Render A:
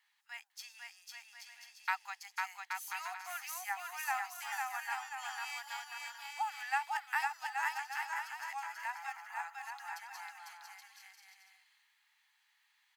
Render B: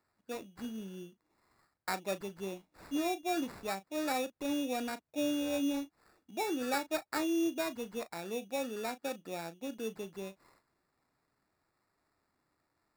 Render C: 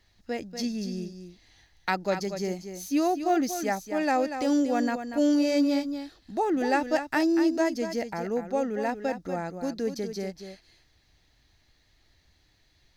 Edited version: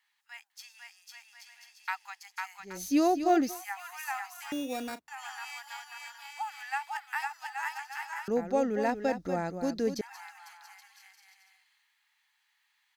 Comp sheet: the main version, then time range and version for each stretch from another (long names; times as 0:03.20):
A
0:02.71–0:03.50: punch in from C, crossfade 0.24 s
0:04.52–0:05.08: punch in from B
0:08.28–0:10.01: punch in from C